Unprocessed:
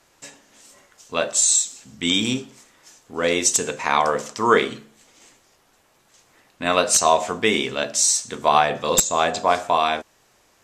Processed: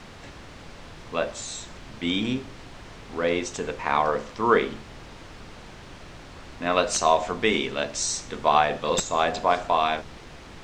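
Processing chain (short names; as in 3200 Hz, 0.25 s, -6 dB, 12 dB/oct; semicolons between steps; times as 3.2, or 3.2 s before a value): high shelf 4500 Hz -11 dB, from 6.76 s +2 dB; added noise pink -39 dBFS; air absorption 110 m; gain -2.5 dB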